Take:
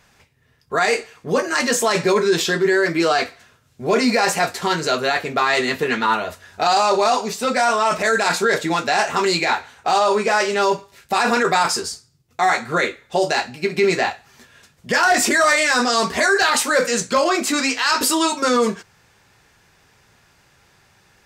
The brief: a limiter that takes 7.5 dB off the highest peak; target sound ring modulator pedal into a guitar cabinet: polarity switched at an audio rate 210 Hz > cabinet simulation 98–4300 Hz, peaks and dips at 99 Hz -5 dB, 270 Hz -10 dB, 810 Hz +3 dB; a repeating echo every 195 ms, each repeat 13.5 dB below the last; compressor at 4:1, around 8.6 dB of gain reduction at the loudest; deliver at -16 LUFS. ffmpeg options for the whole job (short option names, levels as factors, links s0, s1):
-af "acompressor=threshold=0.0708:ratio=4,alimiter=limit=0.112:level=0:latency=1,aecho=1:1:195|390:0.211|0.0444,aeval=exprs='val(0)*sgn(sin(2*PI*210*n/s))':c=same,highpass=98,equalizer=f=99:t=q:w=4:g=-5,equalizer=f=270:t=q:w=4:g=-10,equalizer=f=810:t=q:w=4:g=3,lowpass=f=4300:w=0.5412,lowpass=f=4300:w=1.3066,volume=4.22"